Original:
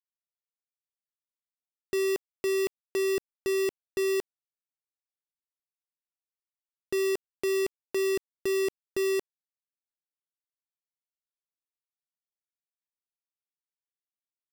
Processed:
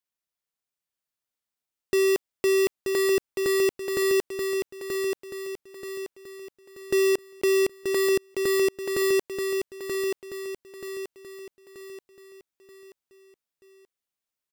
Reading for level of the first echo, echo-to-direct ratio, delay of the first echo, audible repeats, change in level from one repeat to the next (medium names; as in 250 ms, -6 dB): -5.0 dB, -4.0 dB, 931 ms, 5, -7.5 dB